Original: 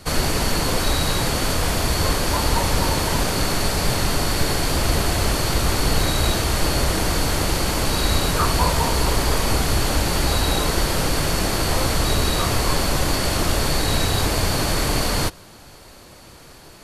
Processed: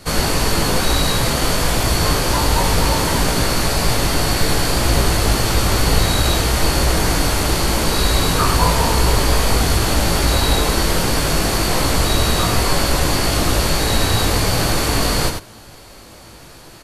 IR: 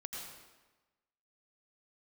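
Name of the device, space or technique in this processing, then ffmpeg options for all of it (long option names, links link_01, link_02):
slapback doubling: -filter_complex "[0:a]asplit=3[link_01][link_02][link_03];[link_02]adelay=18,volume=-4dB[link_04];[link_03]adelay=99,volume=-5.5dB[link_05];[link_01][link_04][link_05]amix=inputs=3:normalize=0,volume=1.5dB"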